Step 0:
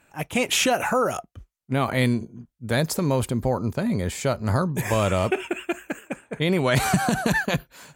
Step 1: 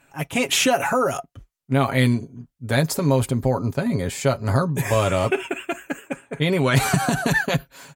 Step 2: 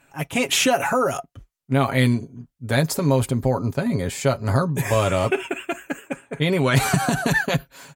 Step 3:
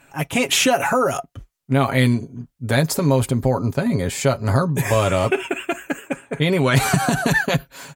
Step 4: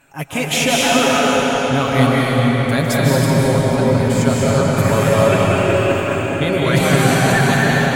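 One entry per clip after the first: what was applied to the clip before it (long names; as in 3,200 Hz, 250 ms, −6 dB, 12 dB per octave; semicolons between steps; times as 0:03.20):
comb filter 7.3 ms, depth 54%; level +1 dB
no processing that can be heard
in parallel at −1 dB: downward compressor, threshold −28 dBFS, peak gain reduction 15 dB; on the sum: floating-point word with a short mantissa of 8 bits
convolution reverb RT60 5.6 s, pre-delay 115 ms, DRR −6.5 dB; level −2 dB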